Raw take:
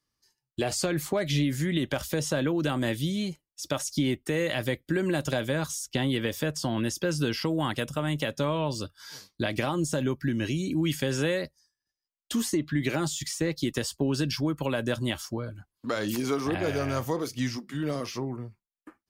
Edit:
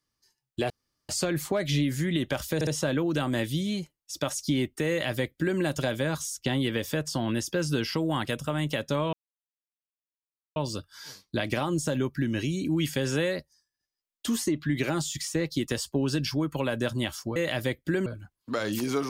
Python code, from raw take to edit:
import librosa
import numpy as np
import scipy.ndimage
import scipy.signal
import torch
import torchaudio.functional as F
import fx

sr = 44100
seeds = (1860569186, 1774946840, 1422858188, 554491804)

y = fx.edit(x, sr, fx.insert_room_tone(at_s=0.7, length_s=0.39),
    fx.stutter(start_s=2.16, slice_s=0.06, count=3),
    fx.duplicate(start_s=4.38, length_s=0.7, to_s=15.42),
    fx.insert_silence(at_s=8.62, length_s=1.43), tone=tone)